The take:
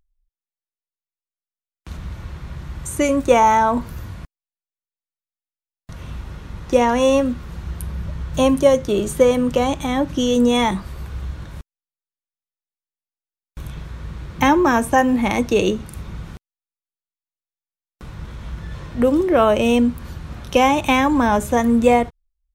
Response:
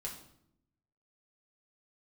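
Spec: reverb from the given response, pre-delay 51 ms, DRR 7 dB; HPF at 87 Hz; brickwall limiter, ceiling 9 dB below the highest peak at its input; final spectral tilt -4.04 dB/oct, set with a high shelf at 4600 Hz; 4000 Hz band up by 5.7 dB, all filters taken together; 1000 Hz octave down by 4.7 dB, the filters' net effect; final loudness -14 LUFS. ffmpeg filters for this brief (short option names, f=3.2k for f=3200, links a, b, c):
-filter_complex "[0:a]highpass=87,equalizer=f=1k:t=o:g=-6.5,equalizer=f=4k:t=o:g=4.5,highshelf=f=4.6k:g=8,alimiter=limit=-10dB:level=0:latency=1,asplit=2[a][b];[1:a]atrim=start_sample=2205,adelay=51[c];[b][c]afir=irnorm=-1:irlink=0,volume=-6dB[d];[a][d]amix=inputs=2:normalize=0,volume=5.5dB"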